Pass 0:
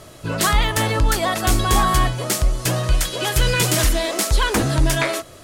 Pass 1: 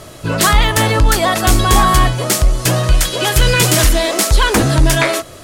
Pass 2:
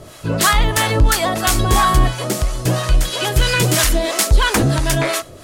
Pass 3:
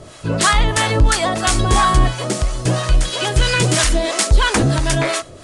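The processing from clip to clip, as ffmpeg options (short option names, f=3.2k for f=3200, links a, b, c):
-af "acontrast=32,volume=1.5dB"
-filter_complex "[0:a]acrossover=split=700[a][b];[a]aeval=exprs='val(0)*(1-0.7/2+0.7/2*cos(2*PI*3*n/s))':c=same[c];[b]aeval=exprs='val(0)*(1-0.7/2-0.7/2*cos(2*PI*3*n/s))':c=same[d];[c][d]amix=inputs=2:normalize=0"
-af "aresample=22050,aresample=44100"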